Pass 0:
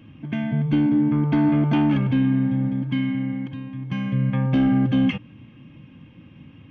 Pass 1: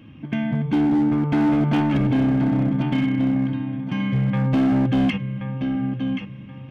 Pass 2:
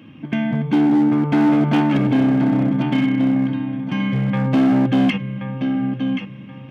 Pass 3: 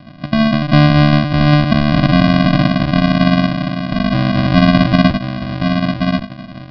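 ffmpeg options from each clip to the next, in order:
-af "bandreject=f=50:t=h:w=6,bandreject=f=100:t=h:w=6,bandreject=f=150:t=h:w=6,aecho=1:1:1078|2156|3234:0.398|0.115|0.0335,volume=17.5dB,asoftclip=hard,volume=-17.5dB,volume=2dB"
-af "highpass=150,volume=4dB"
-af "aresample=16000,acrusher=samples=36:mix=1:aa=0.000001,aresample=44100,aresample=11025,aresample=44100,volume=5dB"

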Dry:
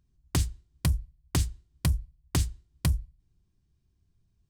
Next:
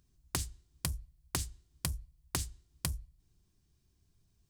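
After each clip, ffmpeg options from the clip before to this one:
-af "bass=f=250:g=-5,treble=f=4k:g=6,acompressor=threshold=-40dB:ratio=2.5,volume=3dB"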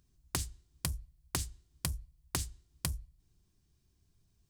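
-af anull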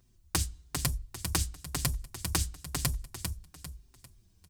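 -filter_complex "[0:a]asplit=2[a][b];[b]aecho=0:1:398|796|1194|1592:0.531|0.186|0.065|0.0228[c];[a][c]amix=inputs=2:normalize=0,asplit=2[d][e];[e]adelay=5.4,afreqshift=-1[f];[d][f]amix=inputs=2:normalize=1,volume=8.5dB"

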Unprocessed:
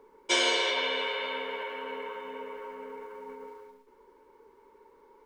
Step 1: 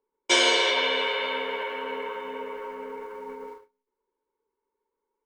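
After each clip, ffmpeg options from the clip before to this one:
-af "agate=range=-30dB:threshold=-46dB:ratio=16:detection=peak,volume=5dB"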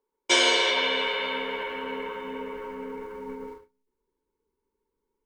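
-af "asubboost=boost=6.5:cutoff=250"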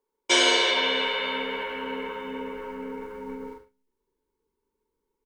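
-filter_complex "[0:a]asplit=2[a][b];[b]adelay=42,volume=-8dB[c];[a][c]amix=inputs=2:normalize=0"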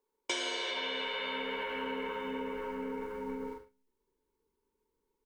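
-af "acompressor=threshold=-31dB:ratio=10,volume=-1.5dB"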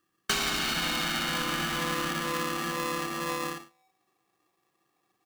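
-af "aeval=exprs='val(0)*sgn(sin(2*PI*760*n/s))':c=same,volume=6.5dB"

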